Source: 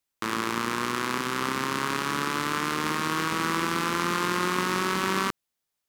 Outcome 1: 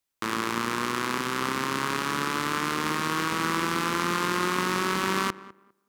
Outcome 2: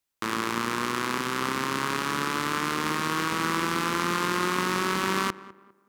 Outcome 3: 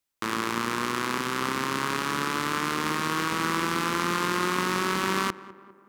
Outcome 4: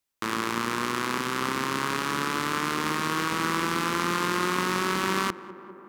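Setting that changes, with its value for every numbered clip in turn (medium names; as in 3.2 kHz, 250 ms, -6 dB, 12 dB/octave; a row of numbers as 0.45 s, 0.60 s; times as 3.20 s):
tape echo, feedback: 22%, 37%, 61%, 92%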